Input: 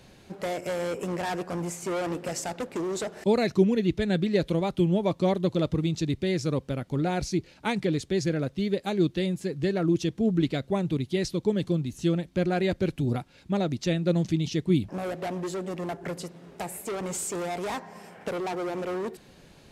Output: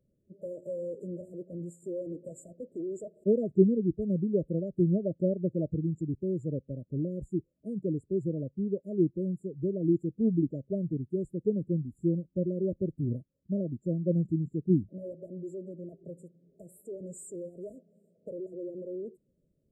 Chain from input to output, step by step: brick-wall FIR band-stop 670–6900 Hz; spectral contrast expander 1.5:1

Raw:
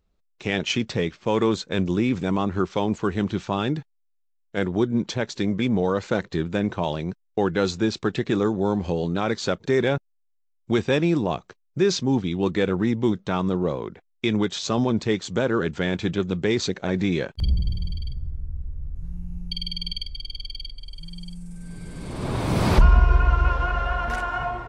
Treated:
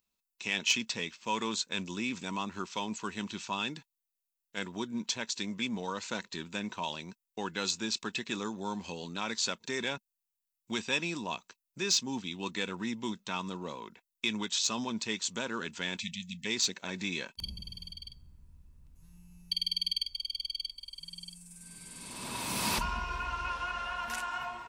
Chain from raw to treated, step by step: spectral selection erased 16.01–16.46 s, 250–1800 Hz; pre-emphasis filter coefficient 0.97; in parallel at -3 dB: overload inside the chain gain 26.5 dB; on the sum: small resonant body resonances 220/960/2600 Hz, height 11 dB, ringing for 35 ms

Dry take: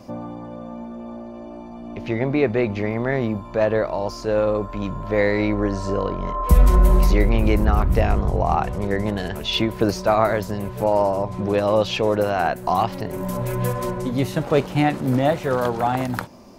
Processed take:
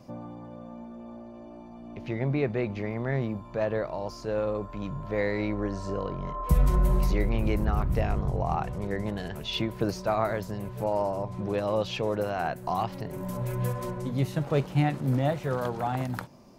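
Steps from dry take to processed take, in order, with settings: peaking EQ 140 Hz +9 dB 0.39 oct; trim -9 dB

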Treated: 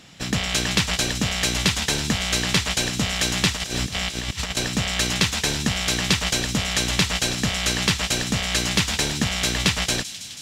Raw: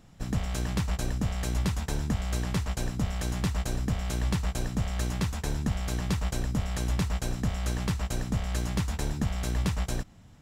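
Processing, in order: frequency weighting D; 3.55–4.57 s: compressor with a negative ratio -36 dBFS, ratio -0.5; feedback echo behind a high-pass 162 ms, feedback 78%, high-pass 3.8 kHz, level -10 dB; trim +8.5 dB

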